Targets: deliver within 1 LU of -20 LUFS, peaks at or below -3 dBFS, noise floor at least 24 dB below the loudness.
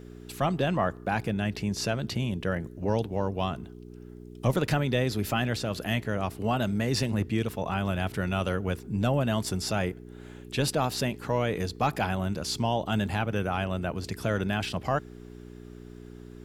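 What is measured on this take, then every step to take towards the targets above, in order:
hum 60 Hz; harmonics up to 420 Hz; hum level -44 dBFS; loudness -29.0 LUFS; peak -12.5 dBFS; loudness target -20.0 LUFS
-> de-hum 60 Hz, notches 7; gain +9 dB

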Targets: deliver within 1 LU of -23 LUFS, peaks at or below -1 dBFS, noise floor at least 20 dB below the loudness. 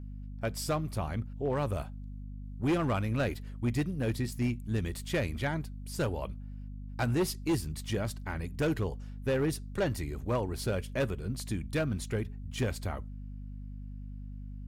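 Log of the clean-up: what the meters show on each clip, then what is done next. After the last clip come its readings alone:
clipped 1.8%; flat tops at -23.5 dBFS; hum 50 Hz; harmonics up to 250 Hz; hum level -39 dBFS; loudness -33.5 LUFS; peak -23.5 dBFS; loudness target -23.0 LUFS
-> clip repair -23.5 dBFS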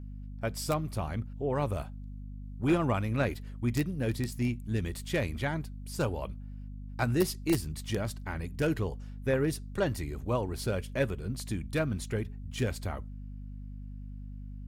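clipped 0.0%; hum 50 Hz; harmonics up to 250 Hz; hum level -39 dBFS
-> notches 50/100/150/200/250 Hz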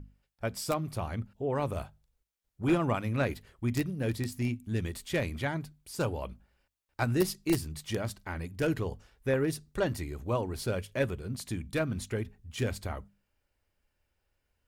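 hum none; loudness -33.0 LUFS; peak -14.0 dBFS; loudness target -23.0 LUFS
-> gain +10 dB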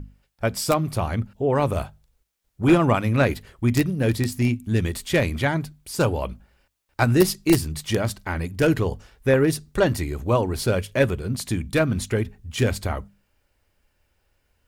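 loudness -23.0 LUFS; peak -4.0 dBFS; noise floor -71 dBFS

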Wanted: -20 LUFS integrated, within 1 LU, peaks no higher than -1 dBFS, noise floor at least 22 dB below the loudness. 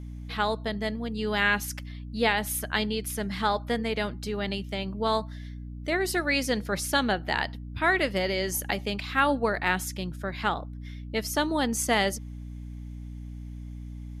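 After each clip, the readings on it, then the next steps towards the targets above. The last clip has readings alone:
hum 60 Hz; harmonics up to 300 Hz; hum level -36 dBFS; loudness -28.0 LUFS; peak -9.5 dBFS; loudness target -20.0 LUFS
-> notches 60/120/180/240/300 Hz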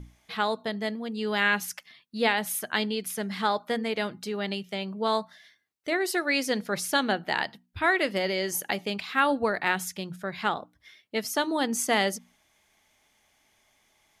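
hum none; loudness -28.0 LUFS; peak -9.5 dBFS; loudness target -20.0 LUFS
-> gain +8 dB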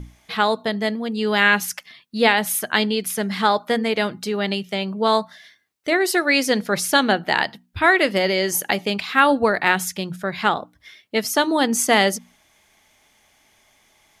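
loudness -20.0 LUFS; peak -1.5 dBFS; noise floor -60 dBFS

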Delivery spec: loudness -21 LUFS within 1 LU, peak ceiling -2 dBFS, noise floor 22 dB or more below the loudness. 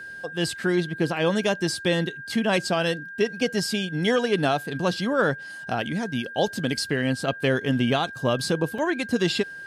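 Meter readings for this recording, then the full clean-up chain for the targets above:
dropouts 1; longest dropout 4.0 ms; steady tone 1600 Hz; tone level -36 dBFS; loudness -25.0 LUFS; peak -10.5 dBFS; loudness target -21.0 LUFS
-> interpolate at 8.78, 4 ms; notch 1600 Hz, Q 30; gain +4 dB

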